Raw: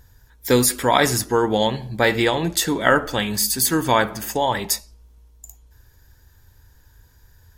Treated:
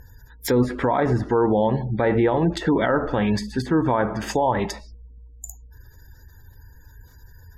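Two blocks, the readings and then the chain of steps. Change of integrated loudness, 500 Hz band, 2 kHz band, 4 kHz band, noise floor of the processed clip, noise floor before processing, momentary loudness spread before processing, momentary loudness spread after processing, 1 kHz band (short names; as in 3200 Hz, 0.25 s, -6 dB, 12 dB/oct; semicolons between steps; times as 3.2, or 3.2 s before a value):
-2.0 dB, -0.5 dB, -7.5 dB, -12.5 dB, -49 dBFS, -54 dBFS, 6 LU, 14 LU, -2.5 dB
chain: spectral gate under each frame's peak -30 dB strong; treble ducked by the level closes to 1100 Hz, closed at -17 dBFS; limiter -16.5 dBFS, peak gain reduction 11 dB; gain +5.5 dB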